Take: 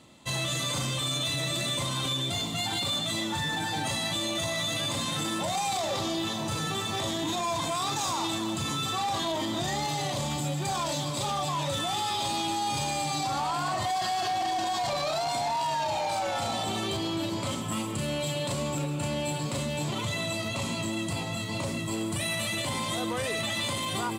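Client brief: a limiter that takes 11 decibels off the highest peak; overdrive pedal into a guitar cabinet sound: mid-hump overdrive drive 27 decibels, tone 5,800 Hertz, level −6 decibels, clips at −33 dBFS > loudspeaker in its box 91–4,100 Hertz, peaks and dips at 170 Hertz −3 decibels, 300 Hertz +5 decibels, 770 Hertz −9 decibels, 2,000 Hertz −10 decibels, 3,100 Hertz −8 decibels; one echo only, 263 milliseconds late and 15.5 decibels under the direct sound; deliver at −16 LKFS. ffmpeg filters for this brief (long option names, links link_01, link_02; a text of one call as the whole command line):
ffmpeg -i in.wav -filter_complex "[0:a]alimiter=level_in=10.5dB:limit=-24dB:level=0:latency=1,volume=-10.5dB,aecho=1:1:263:0.168,asplit=2[link_01][link_02];[link_02]highpass=frequency=720:poles=1,volume=27dB,asoftclip=type=tanh:threshold=-33dB[link_03];[link_01][link_03]amix=inputs=2:normalize=0,lowpass=frequency=5800:poles=1,volume=-6dB,highpass=91,equalizer=frequency=170:width_type=q:width=4:gain=-3,equalizer=frequency=300:width_type=q:width=4:gain=5,equalizer=frequency=770:width_type=q:width=4:gain=-9,equalizer=frequency=2000:width_type=q:width=4:gain=-10,equalizer=frequency=3100:width_type=q:width=4:gain=-8,lowpass=frequency=4100:width=0.5412,lowpass=frequency=4100:width=1.3066,volume=24.5dB" out.wav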